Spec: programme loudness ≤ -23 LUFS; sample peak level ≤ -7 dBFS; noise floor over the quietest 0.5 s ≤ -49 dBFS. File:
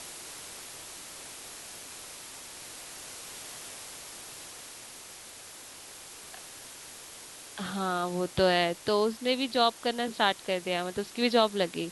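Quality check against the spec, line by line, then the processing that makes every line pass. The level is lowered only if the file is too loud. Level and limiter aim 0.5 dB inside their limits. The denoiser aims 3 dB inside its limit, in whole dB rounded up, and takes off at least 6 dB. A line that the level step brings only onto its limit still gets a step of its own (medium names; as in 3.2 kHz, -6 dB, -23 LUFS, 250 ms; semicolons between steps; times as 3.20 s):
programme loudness -31.0 LUFS: pass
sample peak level -10.0 dBFS: pass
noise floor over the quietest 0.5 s -47 dBFS: fail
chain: noise reduction 6 dB, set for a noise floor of -47 dBFS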